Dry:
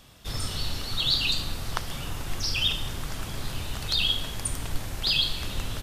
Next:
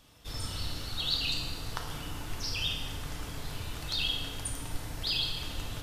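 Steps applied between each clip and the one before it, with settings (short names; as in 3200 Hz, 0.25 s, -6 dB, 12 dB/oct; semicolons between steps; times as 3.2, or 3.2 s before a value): FDN reverb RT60 2.1 s, low-frequency decay 0.7×, high-frequency decay 0.55×, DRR 1 dB; gain -7.5 dB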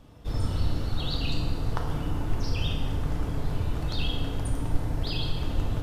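tilt shelf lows +9.5 dB, about 1400 Hz; gain +2 dB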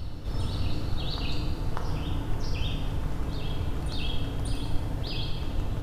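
reverse echo 0.591 s -7.5 dB; gain -2.5 dB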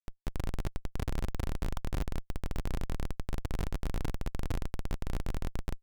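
Schmitt trigger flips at -24.5 dBFS; gain -2 dB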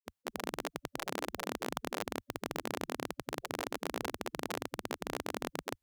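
spectral gate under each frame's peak -20 dB weak; gain +6 dB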